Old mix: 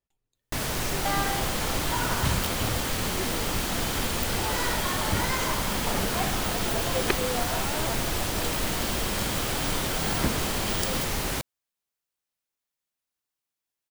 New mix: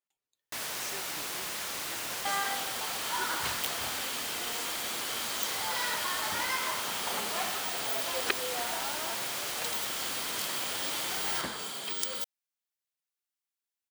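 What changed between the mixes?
first sound -4.0 dB; second sound: entry +1.20 s; master: add HPF 1100 Hz 6 dB/oct

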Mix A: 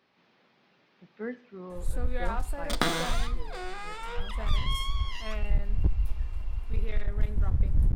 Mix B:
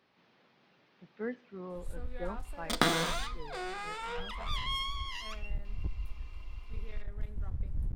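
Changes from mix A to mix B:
speech: send -7.0 dB; first sound -11.0 dB

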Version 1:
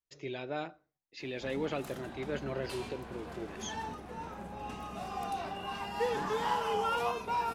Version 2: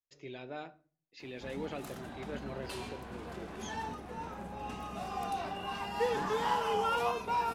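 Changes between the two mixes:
speech -7.5 dB; reverb: on, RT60 0.40 s

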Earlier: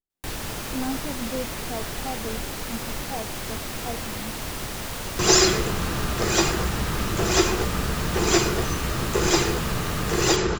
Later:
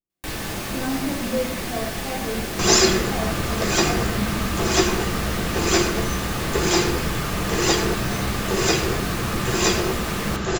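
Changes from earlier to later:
speech -5.0 dB; second sound: entry -2.60 s; reverb: on, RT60 0.80 s

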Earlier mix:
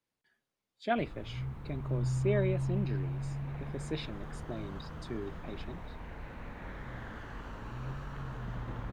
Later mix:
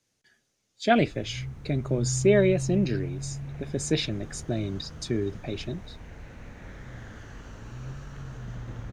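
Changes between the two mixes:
speech +11.0 dB; master: add fifteen-band EQ 100 Hz +5 dB, 1000 Hz -7 dB, 6300 Hz +12 dB

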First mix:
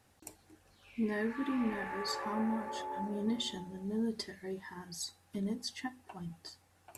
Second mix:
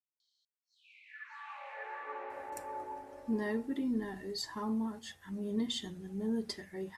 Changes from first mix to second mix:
speech: entry +2.30 s; reverb: off

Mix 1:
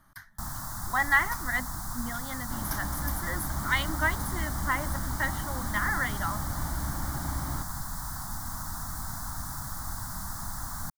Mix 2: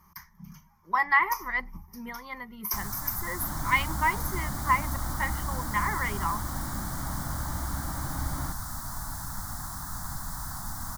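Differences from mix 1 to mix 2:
speech: add ripple EQ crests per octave 0.8, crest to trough 17 dB; first sound: entry +2.35 s; second sound: entry +0.90 s

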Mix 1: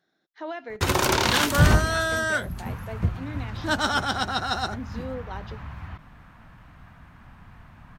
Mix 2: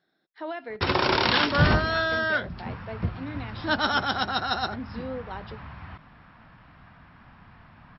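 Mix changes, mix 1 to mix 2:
background: add low shelf 87 Hz -10 dB; master: add brick-wall FIR low-pass 5600 Hz

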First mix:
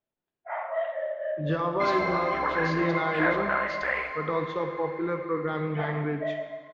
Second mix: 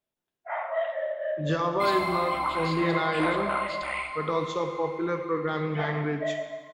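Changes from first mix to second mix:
background: add fixed phaser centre 1700 Hz, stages 6; master: remove air absorption 260 m

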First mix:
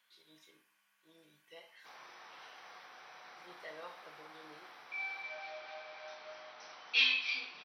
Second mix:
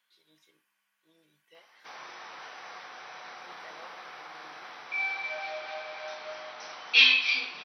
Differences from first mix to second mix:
speech: send -10.0 dB; background +9.5 dB

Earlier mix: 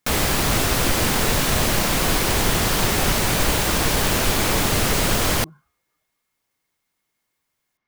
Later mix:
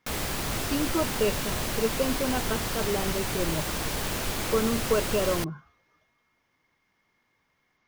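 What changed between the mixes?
speech +10.5 dB; background -10.5 dB

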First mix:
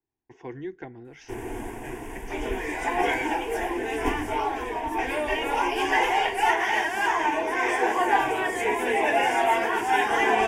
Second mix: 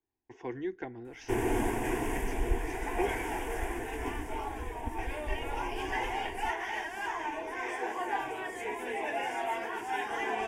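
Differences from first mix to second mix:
speech: add bell 150 Hz -9.5 dB 0.34 oct; first sound +5.0 dB; second sound -11.5 dB

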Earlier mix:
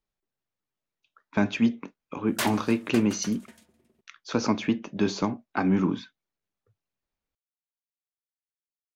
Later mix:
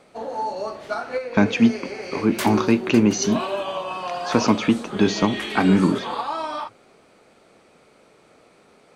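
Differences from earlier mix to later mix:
speech +6.5 dB; first sound: unmuted

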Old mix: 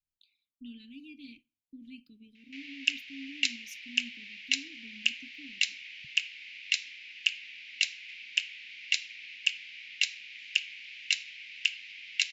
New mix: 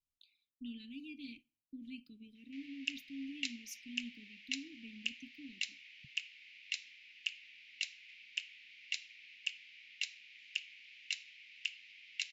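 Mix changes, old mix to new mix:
background -11.0 dB; master: add notch 1600 Hz, Q 18

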